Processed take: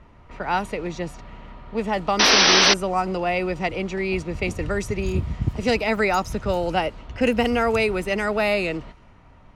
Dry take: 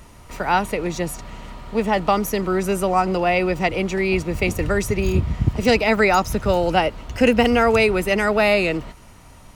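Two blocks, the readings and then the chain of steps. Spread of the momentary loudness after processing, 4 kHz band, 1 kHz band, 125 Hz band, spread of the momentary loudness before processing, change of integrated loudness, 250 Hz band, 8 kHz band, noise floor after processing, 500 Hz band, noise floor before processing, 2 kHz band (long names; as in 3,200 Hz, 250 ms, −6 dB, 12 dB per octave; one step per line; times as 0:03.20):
14 LU, +7.5 dB, −3.0 dB, −4.5 dB, 9 LU, −1.5 dB, −4.5 dB, +6.5 dB, −50 dBFS, −4.0 dB, −45 dBFS, −1.0 dB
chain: low-pass that shuts in the quiet parts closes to 2,200 Hz, open at −13.5 dBFS
sound drawn into the spectrogram noise, 0:02.19–0:02.74, 230–6,100 Hz −11 dBFS
level −4.5 dB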